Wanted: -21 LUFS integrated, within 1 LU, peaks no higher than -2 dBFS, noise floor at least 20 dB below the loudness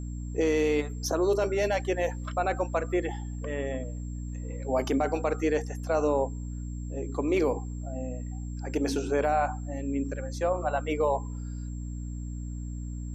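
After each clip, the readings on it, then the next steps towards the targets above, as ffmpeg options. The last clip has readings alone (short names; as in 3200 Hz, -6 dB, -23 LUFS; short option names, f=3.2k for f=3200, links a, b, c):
hum 60 Hz; harmonics up to 300 Hz; hum level -33 dBFS; steady tone 7500 Hz; tone level -54 dBFS; loudness -30.0 LUFS; peak -15.0 dBFS; loudness target -21.0 LUFS
-> -af "bandreject=f=60:t=h:w=6,bandreject=f=120:t=h:w=6,bandreject=f=180:t=h:w=6,bandreject=f=240:t=h:w=6,bandreject=f=300:t=h:w=6"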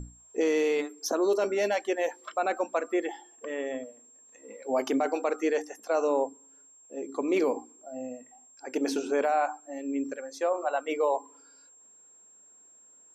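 hum none; steady tone 7500 Hz; tone level -54 dBFS
-> -af "bandreject=f=7.5k:w=30"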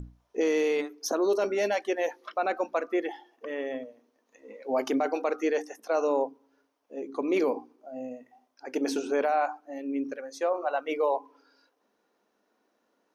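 steady tone none; loudness -29.5 LUFS; peak -16.5 dBFS; loudness target -21.0 LUFS
-> -af "volume=8.5dB"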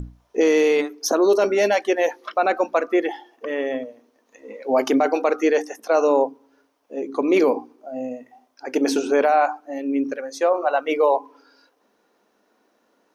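loudness -21.0 LUFS; peak -8.0 dBFS; noise floor -66 dBFS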